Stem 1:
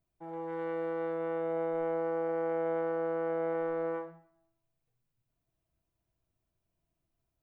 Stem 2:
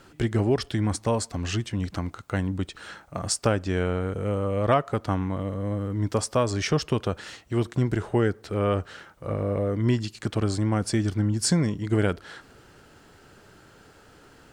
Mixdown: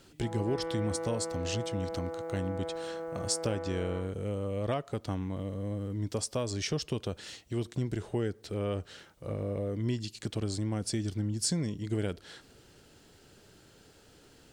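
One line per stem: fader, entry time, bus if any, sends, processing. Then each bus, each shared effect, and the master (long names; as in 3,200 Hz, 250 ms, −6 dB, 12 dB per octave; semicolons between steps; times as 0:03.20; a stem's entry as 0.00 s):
+2.0 dB, 0.00 s, no send, automatic ducking −8 dB, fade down 1.95 s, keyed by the second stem
−5.0 dB, 0.00 s, no send, drawn EQ curve 480 Hz 0 dB, 1,300 Hz −7 dB, 3,600 Hz +4 dB; downward compressor 1.5 to 1, threshold −29 dBFS, peak gain reduction 4.5 dB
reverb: not used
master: no processing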